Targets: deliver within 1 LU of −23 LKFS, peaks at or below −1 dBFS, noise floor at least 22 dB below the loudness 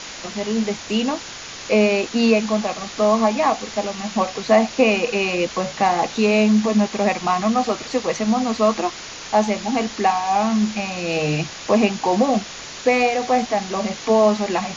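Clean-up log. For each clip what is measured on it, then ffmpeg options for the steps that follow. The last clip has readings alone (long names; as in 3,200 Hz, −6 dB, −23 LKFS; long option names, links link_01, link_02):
background noise floor −35 dBFS; target noise floor −42 dBFS; integrated loudness −20.0 LKFS; sample peak −2.5 dBFS; target loudness −23.0 LKFS
→ -af "afftdn=noise_reduction=7:noise_floor=-35"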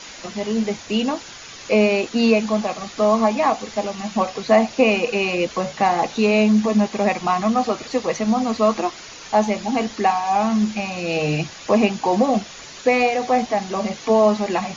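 background noise floor −39 dBFS; target noise floor −42 dBFS
→ -af "afftdn=noise_reduction=6:noise_floor=-39"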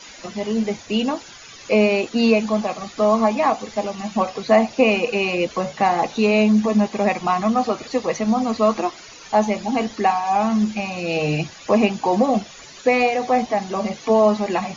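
background noise floor −42 dBFS; integrated loudness −20.0 LKFS; sample peak −2.5 dBFS; target loudness −23.0 LKFS
→ -af "volume=-3dB"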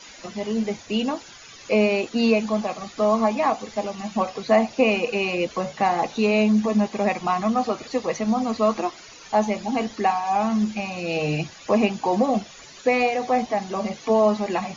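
integrated loudness −23.0 LKFS; sample peak −5.5 dBFS; background noise floor −45 dBFS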